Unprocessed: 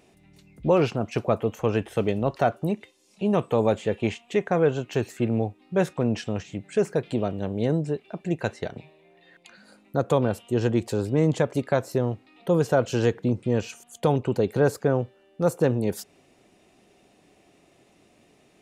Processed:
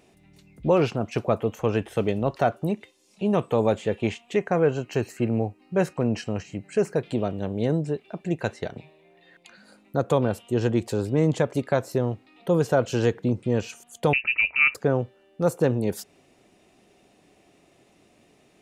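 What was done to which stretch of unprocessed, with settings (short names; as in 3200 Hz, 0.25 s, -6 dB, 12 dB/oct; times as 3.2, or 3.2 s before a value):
4.36–6.99 Butterworth band-stop 3500 Hz, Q 5.8
14.13–14.75 inverted band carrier 2800 Hz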